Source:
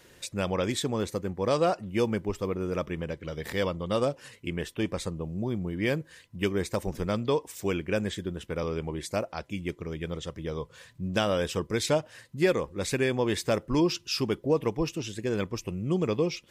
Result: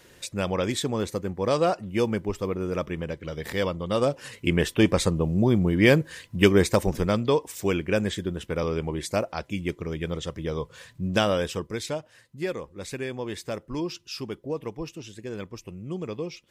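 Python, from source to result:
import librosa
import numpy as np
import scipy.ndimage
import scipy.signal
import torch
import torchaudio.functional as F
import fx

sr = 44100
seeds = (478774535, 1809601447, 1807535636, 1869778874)

y = fx.gain(x, sr, db=fx.line((3.94, 2.0), (4.5, 10.0), (6.57, 10.0), (7.24, 4.0), (11.23, 4.0), (11.96, -6.0)))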